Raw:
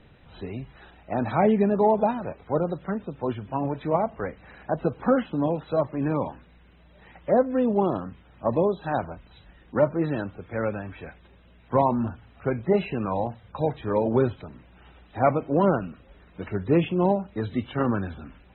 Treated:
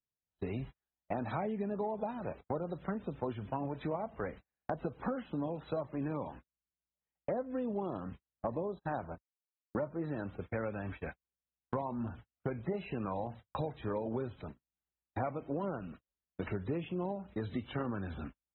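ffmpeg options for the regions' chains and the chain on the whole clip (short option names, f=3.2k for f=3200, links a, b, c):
-filter_complex "[0:a]asettb=1/sr,asplit=3[a][b][c];[a]atrim=end=8.514[d];[b]atrim=start=8.51:end=10.24,asetpts=PTS-STARTPTS,afade=t=in:d=0.004:c=qsin,afade=t=out:st=1.726:d=0.004:c=qsin,equalizer=f=3.1k:t=o:w=0.57:g=-10.5,agate=range=-34dB:threshold=-40dB:ratio=16:release=100:detection=peak[e];[c]atrim=start=10.236[f];[d][e]acrossfade=d=0.004:c1=hsin:c2=qsin[g];[g][f]acrossfade=d=0.004:c1=qsin:c2=hsin,agate=range=-49dB:threshold=-40dB:ratio=16:detection=peak,acompressor=threshold=-33dB:ratio=10"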